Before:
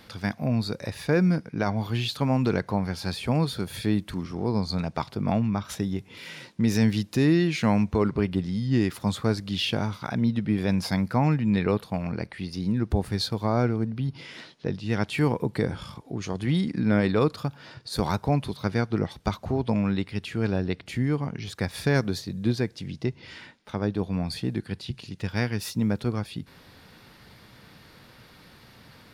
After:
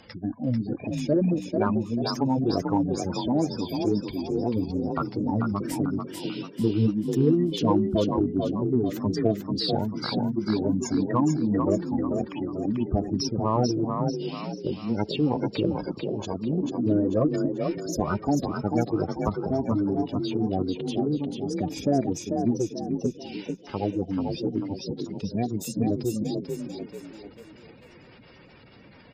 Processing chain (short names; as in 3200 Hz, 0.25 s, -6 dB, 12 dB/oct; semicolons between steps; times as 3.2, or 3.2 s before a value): spectral gate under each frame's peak -15 dB strong; formant shift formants +6 st; frequency-shifting echo 0.441 s, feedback 40%, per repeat +34 Hz, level -5 dB; added harmonics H 8 -39 dB, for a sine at -8.5 dBFS